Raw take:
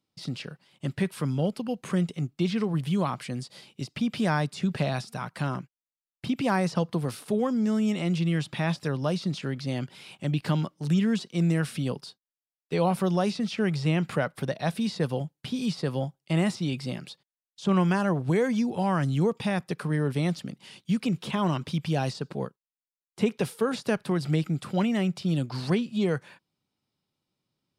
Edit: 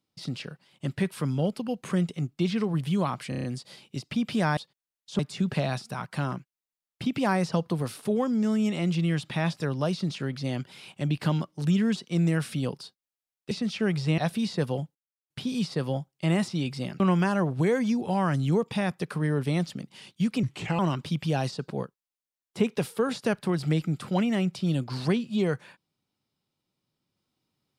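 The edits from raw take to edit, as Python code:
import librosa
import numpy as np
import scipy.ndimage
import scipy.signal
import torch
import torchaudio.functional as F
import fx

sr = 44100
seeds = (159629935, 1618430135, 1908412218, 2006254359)

y = fx.edit(x, sr, fx.stutter(start_s=3.29, slice_s=0.03, count=6),
    fx.cut(start_s=12.74, length_s=0.55),
    fx.cut(start_s=13.96, length_s=0.64),
    fx.insert_silence(at_s=15.37, length_s=0.35),
    fx.move(start_s=17.07, length_s=0.62, to_s=4.42),
    fx.speed_span(start_s=21.12, length_s=0.29, speed=0.81), tone=tone)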